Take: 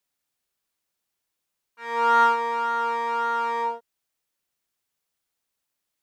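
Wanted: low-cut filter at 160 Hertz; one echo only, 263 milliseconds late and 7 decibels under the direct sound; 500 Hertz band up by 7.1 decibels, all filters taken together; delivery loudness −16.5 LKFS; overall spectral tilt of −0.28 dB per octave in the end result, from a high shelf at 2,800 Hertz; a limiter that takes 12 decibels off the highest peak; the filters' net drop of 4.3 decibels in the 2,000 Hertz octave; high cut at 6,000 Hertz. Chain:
high-pass filter 160 Hz
low-pass filter 6,000 Hz
parametric band 500 Hz +8 dB
parametric band 2,000 Hz −5.5 dB
high-shelf EQ 2,800 Hz −5.5 dB
brickwall limiter −19.5 dBFS
single-tap delay 263 ms −7 dB
level +11.5 dB

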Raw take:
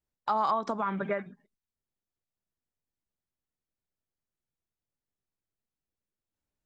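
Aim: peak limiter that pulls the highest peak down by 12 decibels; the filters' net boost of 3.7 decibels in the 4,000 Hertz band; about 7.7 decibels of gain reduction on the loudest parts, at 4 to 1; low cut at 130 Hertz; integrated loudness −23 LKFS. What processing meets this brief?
high-pass filter 130 Hz
parametric band 4,000 Hz +4.5 dB
downward compressor 4 to 1, threshold −32 dBFS
level +18 dB
brickwall limiter −13 dBFS

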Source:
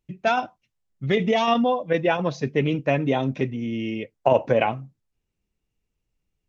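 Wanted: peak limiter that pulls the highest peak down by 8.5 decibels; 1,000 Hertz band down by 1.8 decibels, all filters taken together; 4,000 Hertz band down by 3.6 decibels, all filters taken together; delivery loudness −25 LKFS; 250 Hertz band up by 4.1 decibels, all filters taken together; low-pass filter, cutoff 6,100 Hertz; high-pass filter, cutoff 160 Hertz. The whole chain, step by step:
high-pass filter 160 Hz
low-pass filter 6,100 Hz
parametric band 250 Hz +6 dB
parametric band 1,000 Hz −3 dB
parametric band 4,000 Hz −4.5 dB
level −0.5 dB
brickwall limiter −14 dBFS

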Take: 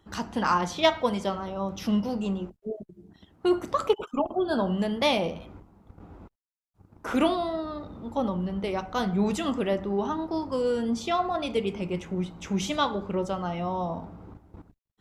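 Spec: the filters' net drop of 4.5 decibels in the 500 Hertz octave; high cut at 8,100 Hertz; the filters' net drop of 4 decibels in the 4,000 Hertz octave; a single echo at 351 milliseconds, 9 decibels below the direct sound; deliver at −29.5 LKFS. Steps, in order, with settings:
low-pass filter 8,100 Hz
parametric band 500 Hz −6 dB
parametric band 4,000 Hz −5 dB
single-tap delay 351 ms −9 dB
level +0.5 dB

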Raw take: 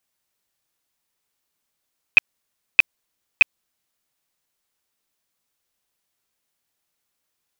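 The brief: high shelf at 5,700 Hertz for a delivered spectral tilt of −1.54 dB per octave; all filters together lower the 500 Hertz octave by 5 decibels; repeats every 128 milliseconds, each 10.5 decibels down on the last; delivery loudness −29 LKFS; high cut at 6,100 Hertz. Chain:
low-pass filter 6,100 Hz
parametric band 500 Hz −6.5 dB
high-shelf EQ 5,700 Hz −7.5 dB
repeating echo 128 ms, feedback 30%, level −10.5 dB
level −7.5 dB

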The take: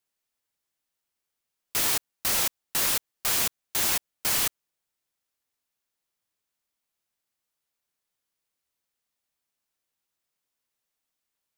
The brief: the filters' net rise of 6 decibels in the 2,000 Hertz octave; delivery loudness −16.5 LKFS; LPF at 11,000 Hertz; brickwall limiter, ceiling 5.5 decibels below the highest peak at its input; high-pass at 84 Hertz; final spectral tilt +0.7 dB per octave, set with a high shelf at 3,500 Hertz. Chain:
high-pass filter 84 Hz
low-pass filter 11,000 Hz
parametric band 2,000 Hz +4.5 dB
high-shelf EQ 3,500 Hz +9 dB
level +7 dB
brickwall limiter −6 dBFS

